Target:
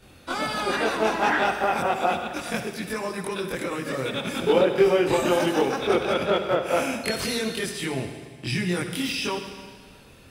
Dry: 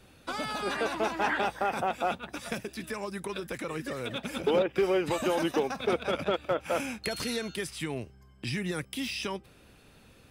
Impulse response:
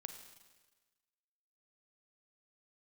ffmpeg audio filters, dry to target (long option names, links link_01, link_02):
-filter_complex "[0:a]asplit=2[link_01][link_02];[1:a]atrim=start_sample=2205,asetrate=34398,aresample=44100,adelay=23[link_03];[link_02][link_03]afir=irnorm=-1:irlink=0,volume=7dB[link_04];[link_01][link_04]amix=inputs=2:normalize=0,volume=1dB"